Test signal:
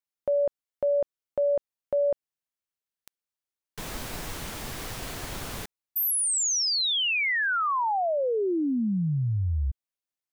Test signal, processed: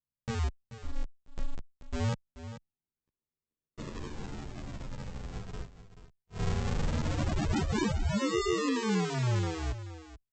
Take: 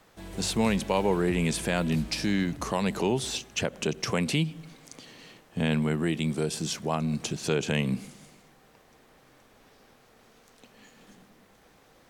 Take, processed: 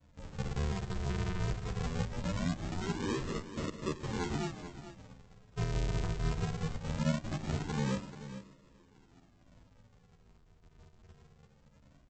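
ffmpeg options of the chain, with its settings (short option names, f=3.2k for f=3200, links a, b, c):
-filter_complex "[0:a]alimiter=limit=-23.5dB:level=0:latency=1:release=12,aresample=16000,acrusher=samples=39:mix=1:aa=0.000001:lfo=1:lforange=39:lforate=0.21,aresample=44100,aecho=1:1:433:0.224,asplit=2[a][b];[b]adelay=10.8,afreqshift=-0.26[c];[a][c]amix=inputs=2:normalize=1"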